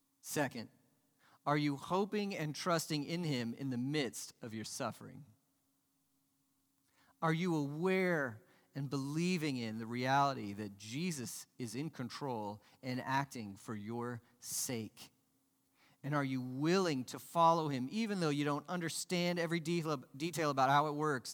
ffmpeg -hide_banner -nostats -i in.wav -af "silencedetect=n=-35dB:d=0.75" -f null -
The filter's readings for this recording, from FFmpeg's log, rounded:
silence_start: 0.60
silence_end: 1.47 | silence_duration: 0.87
silence_start: 4.90
silence_end: 7.23 | silence_duration: 2.33
silence_start: 14.82
silence_end: 16.06 | silence_duration: 1.24